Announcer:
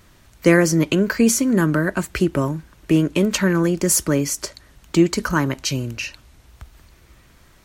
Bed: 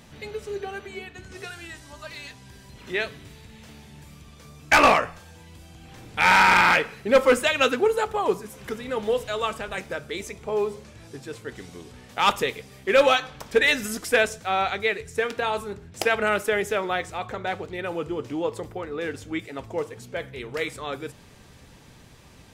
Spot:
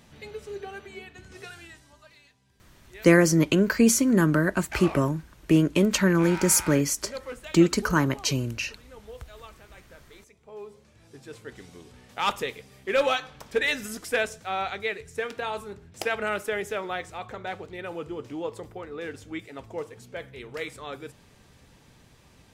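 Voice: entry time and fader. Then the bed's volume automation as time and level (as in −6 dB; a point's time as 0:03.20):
2.60 s, −3.0 dB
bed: 0:01.58 −5 dB
0:02.34 −20 dB
0:10.35 −20 dB
0:11.35 −5.5 dB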